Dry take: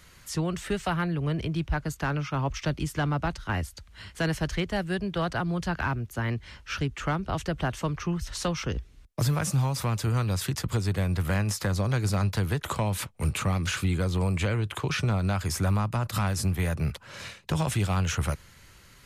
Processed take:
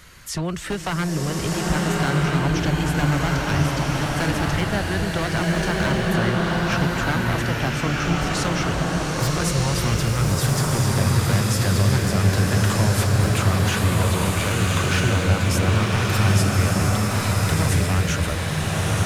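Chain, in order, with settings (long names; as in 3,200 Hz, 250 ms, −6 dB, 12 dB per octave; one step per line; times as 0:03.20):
parametric band 1,500 Hz +2 dB
in parallel at +1 dB: downward compressor, threshold −33 dBFS, peak gain reduction 11.5 dB
on the sum: wave folding −18.5 dBFS
slow-attack reverb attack 1,340 ms, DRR −4.5 dB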